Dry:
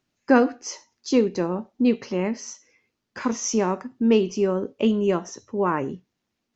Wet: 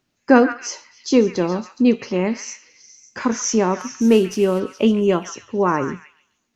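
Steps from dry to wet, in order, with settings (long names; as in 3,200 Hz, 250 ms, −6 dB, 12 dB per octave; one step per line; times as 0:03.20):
0:03.79–0:04.60: variable-slope delta modulation 64 kbit/s
echo through a band-pass that steps 139 ms, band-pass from 1,700 Hz, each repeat 0.7 octaves, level −6 dB
level +4.5 dB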